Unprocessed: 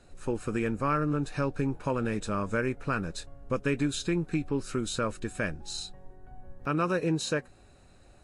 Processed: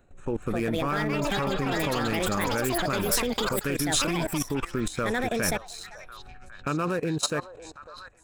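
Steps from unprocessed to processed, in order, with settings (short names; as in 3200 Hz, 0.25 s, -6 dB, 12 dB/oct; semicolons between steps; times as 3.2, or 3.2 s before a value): Wiener smoothing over 9 samples; on a send: delay with a stepping band-pass 0.55 s, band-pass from 800 Hz, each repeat 0.7 oct, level -4.5 dB; on the sum: echoes that change speed 0.341 s, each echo +6 st, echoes 3; level quantiser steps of 17 dB; high shelf 5800 Hz +11.5 dB; gain +7 dB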